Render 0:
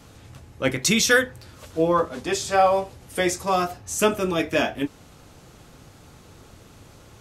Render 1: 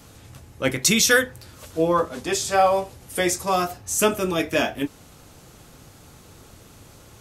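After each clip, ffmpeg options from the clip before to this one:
-af "highshelf=f=8000:g=9"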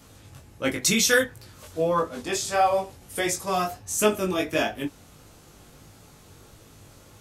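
-af "flanger=delay=18.5:depth=2.9:speed=1.5"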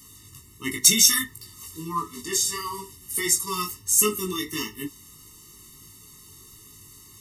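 -af "crystalizer=i=5:c=0,afftfilt=real='re*eq(mod(floor(b*sr/1024/440),2),0)':imag='im*eq(mod(floor(b*sr/1024/440),2),0)':win_size=1024:overlap=0.75,volume=0.668"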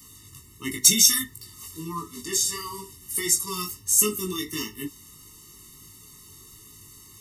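-filter_complex "[0:a]acrossover=split=420|3000[s0][s1][s2];[s1]acompressor=threshold=0.00631:ratio=1.5[s3];[s0][s3][s2]amix=inputs=3:normalize=0"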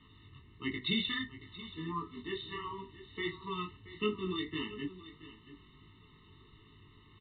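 -af "aecho=1:1:677:0.168,volume=0.562" -ar 8000 -c:a pcm_mulaw

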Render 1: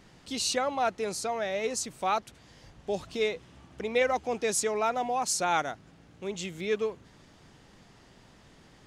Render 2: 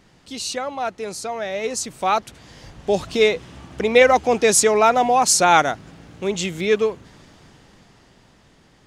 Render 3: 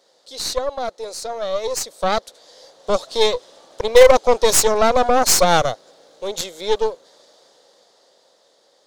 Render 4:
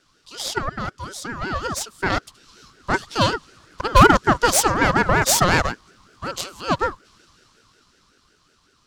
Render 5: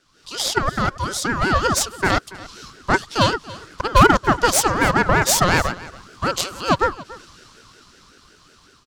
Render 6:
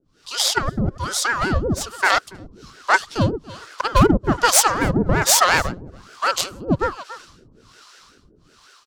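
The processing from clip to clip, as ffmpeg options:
-af "dynaudnorm=f=260:g=17:m=4.47,volume=1.19"
-af "highpass=f=530:t=q:w=4.9,highshelf=f=3200:t=q:w=3:g=6,aeval=exprs='1.58*(cos(1*acos(clip(val(0)/1.58,-1,1)))-cos(1*PI/2))+0.282*(cos(4*acos(clip(val(0)/1.58,-1,1)))-cos(4*PI/2))+0.0891*(cos(8*acos(clip(val(0)/1.58,-1,1)))-cos(8*PI/2))':c=same,volume=0.447"
-af "aeval=exprs='val(0)*sin(2*PI*740*n/s+740*0.3/5.4*sin(2*PI*5.4*n/s))':c=same"
-af "dynaudnorm=f=120:g=3:m=3.16,aecho=1:1:283:0.112,volume=0.891"
-filter_complex "[0:a]acrossover=split=520[s0][s1];[s0]aeval=exprs='val(0)*(1-1/2+1/2*cos(2*PI*1.2*n/s))':c=same[s2];[s1]aeval=exprs='val(0)*(1-1/2-1/2*cos(2*PI*1.2*n/s))':c=same[s3];[s2][s3]amix=inputs=2:normalize=0,volume=1.58"

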